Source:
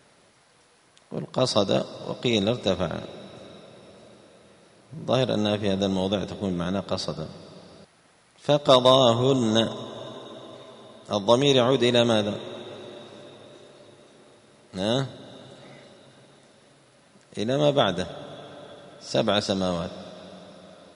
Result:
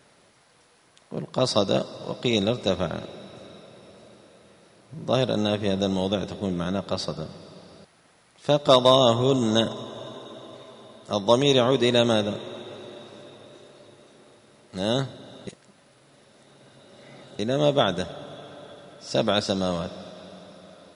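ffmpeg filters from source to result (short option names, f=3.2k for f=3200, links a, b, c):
-filter_complex "[0:a]asplit=3[a][b][c];[a]atrim=end=15.472[d];[b]atrim=start=15.468:end=17.392,asetpts=PTS-STARTPTS,areverse[e];[c]atrim=start=17.388[f];[d][e]acrossfade=d=0.004:c1=hsin:c2=hsin[g];[g][f]acrossfade=d=0.004:c1=hsin:c2=hsin"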